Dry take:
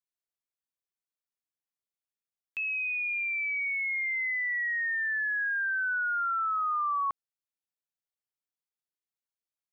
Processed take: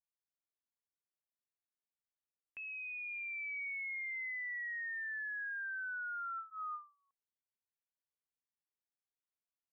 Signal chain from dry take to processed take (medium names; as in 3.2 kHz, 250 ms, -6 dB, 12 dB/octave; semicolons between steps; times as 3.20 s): low-pass 2.2 kHz 24 dB/octave; band-stop 1.3 kHz, Q 11; peak limiter -31.5 dBFS, peak gain reduction 5.5 dB; endings held to a fixed fall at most 180 dB/s; trim -6.5 dB